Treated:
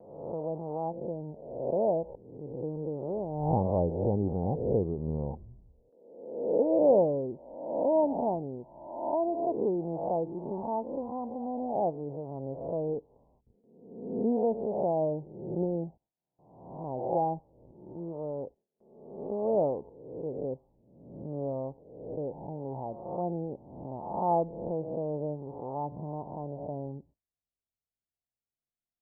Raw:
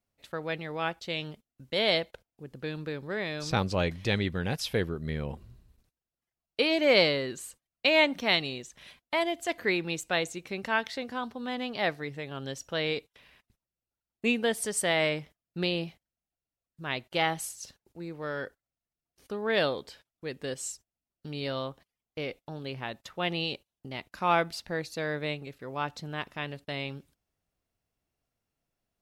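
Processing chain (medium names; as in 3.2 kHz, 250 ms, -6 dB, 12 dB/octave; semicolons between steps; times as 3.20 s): reverse spectral sustain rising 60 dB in 0.98 s; steep low-pass 920 Hz 72 dB/octave; gate with hold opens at -58 dBFS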